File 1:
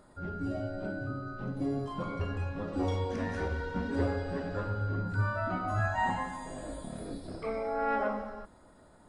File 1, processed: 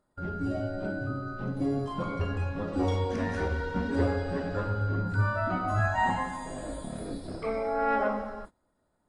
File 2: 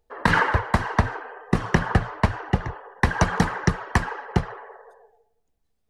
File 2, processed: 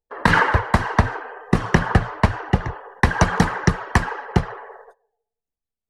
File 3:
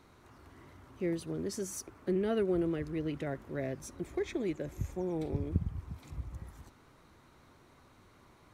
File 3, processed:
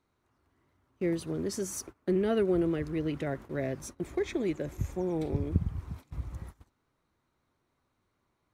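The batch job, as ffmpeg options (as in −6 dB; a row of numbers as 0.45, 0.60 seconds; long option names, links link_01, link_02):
-af "agate=range=-20dB:threshold=-47dB:ratio=16:detection=peak,volume=3.5dB"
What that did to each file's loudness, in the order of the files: +3.5, +3.5, +3.5 LU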